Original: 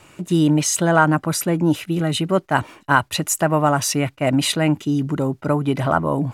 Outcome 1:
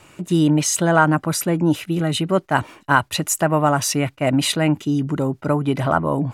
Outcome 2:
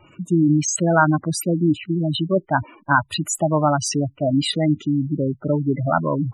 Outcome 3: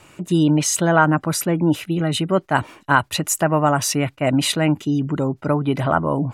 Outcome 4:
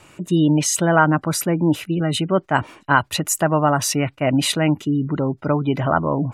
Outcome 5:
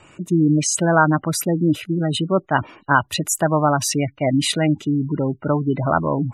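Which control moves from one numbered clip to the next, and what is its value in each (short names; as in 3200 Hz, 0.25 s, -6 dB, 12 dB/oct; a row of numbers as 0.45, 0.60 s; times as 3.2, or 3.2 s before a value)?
spectral gate, under each frame's peak: -60, -10, -45, -35, -20 dB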